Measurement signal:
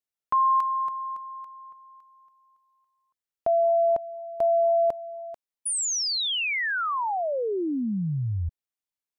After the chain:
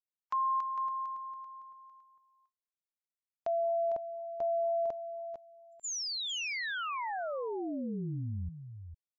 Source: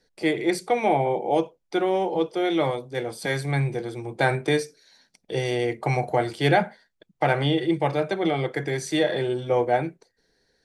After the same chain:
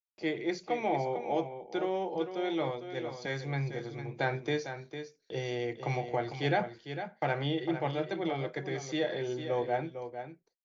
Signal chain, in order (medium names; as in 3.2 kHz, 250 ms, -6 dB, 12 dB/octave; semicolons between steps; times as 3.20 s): gate -52 dBFS, range -49 dB; delay 453 ms -9.5 dB; trim -9 dB; MP3 64 kbps 16 kHz